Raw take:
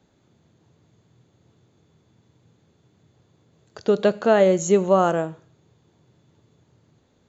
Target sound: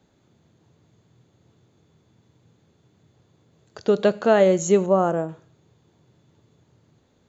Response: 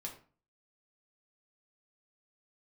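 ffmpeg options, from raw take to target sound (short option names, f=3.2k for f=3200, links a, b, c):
-filter_complex "[0:a]asettb=1/sr,asplit=3[a][b][c];[a]atrim=end=4.864[d];[b]atrim=start=4.86:end=5.29,asetpts=PTS-STARTPTS,afade=t=in:d=0.004:c=qsin,afade=t=out:st=0.426:d=0.004:c=qsin,equalizer=f=3.7k:t=o:w=2.4:g=-12[e];[c]atrim=start=5.286[f];[d][e]acrossfade=d=0.004:c1=hsin:c2=qsin[g];[g][f]acrossfade=d=0.004:c1=qsin:c2=hsin"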